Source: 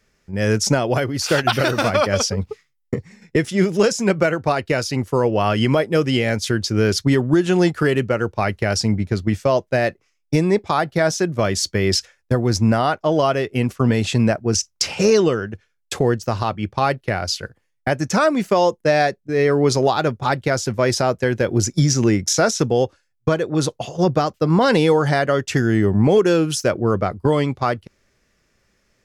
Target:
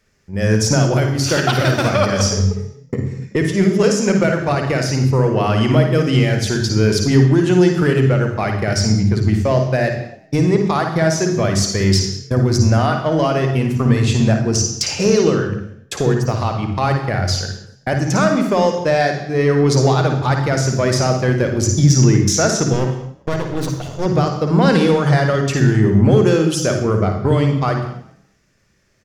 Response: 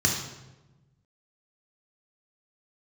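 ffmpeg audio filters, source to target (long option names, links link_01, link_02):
-filter_complex "[0:a]acontrast=45,asettb=1/sr,asplit=3[link_01][link_02][link_03];[link_01]atrim=end=22.734[link_04];[link_02]atrim=start=22.73:end=24.06,asetpts=PTS-STARTPTS,afade=type=in:duration=0.004:curve=qsin,afade=type=out:start_time=1.326:duration=0.004:curve=qsin,aeval=exprs='max(val(0),0)':channel_layout=same[link_05];[link_03]atrim=start=24.056[link_06];[link_04][link_05]acrossfade=duration=0.004:curve1=hsin:curve2=qsin[link_07];[link_07][link_06]acrossfade=duration=0.004:curve1=qsin:curve2=hsin,asplit=3[link_08][link_09][link_10];[link_09]adelay=190,afreqshift=34,volume=-23dB[link_11];[link_10]adelay=380,afreqshift=68,volume=-33.2dB[link_12];[link_08][link_11][link_12]amix=inputs=3:normalize=0,asplit=2[link_13][link_14];[1:a]atrim=start_sample=2205,afade=type=out:start_time=0.3:duration=0.01,atrim=end_sample=13671,adelay=54[link_15];[link_14][link_15]afir=irnorm=-1:irlink=0,volume=-16dB[link_16];[link_13][link_16]amix=inputs=2:normalize=0,volume=-5.5dB"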